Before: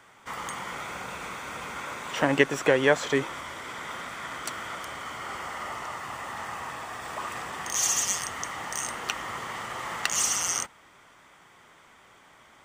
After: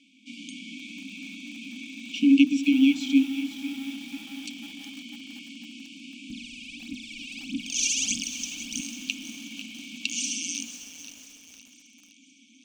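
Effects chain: steep high-pass 220 Hz 48 dB/octave; peaking EQ 360 Hz +12 dB 2.1 oct; hum notches 50/100/150/200/250/300/350/400/450/500 Hz; 6.30–8.81 s: phaser 1.6 Hz, delay 2.2 ms, feedback 78%; brick-wall FIR band-stop 300–2200 Hz; distance through air 120 m; two-band feedback delay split 320 Hz, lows 278 ms, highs 514 ms, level -15 dB; bit-crushed delay 495 ms, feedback 55%, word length 7-bit, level -13 dB; trim +3.5 dB

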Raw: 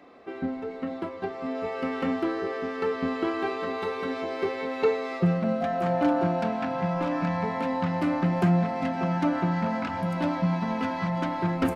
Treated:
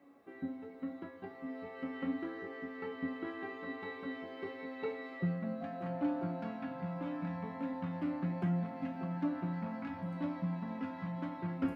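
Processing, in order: high-pass 190 Hz 6 dB/octave; tone controls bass +11 dB, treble -14 dB; word length cut 12-bit, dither none; feedback comb 280 Hz, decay 0.48 s, harmonics all, mix 90%; trim +2 dB

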